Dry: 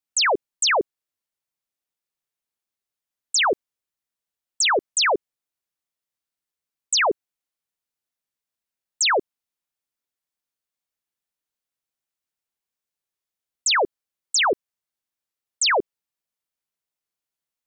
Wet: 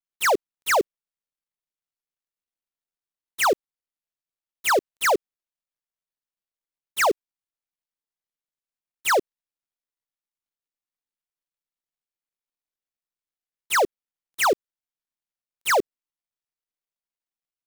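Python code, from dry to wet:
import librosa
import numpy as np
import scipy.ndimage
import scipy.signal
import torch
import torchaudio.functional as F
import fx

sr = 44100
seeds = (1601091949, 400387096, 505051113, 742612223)

y = fx.dead_time(x, sr, dead_ms=0.12)
y = y * 10.0 ** (1.0 / 20.0)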